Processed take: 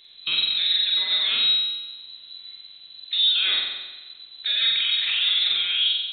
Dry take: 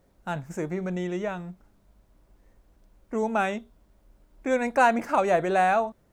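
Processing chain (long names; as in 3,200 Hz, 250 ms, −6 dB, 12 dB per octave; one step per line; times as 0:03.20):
treble cut that deepens with the level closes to 2,200 Hz, closed at −19 dBFS
compressor whose output falls as the input rises −28 dBFS, ratio −1
brickwall limiter −25.5 dBFS, peak gain reduction 9.5 dB
voice inversion scrambler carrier 4,000 Hz
flutter between parallel walls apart 7.8 metres, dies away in 1.1 s
convolution reverb RT60 2.2 s, pre-delay 3 ms, DRR 15.5 dB
level +7.5 dB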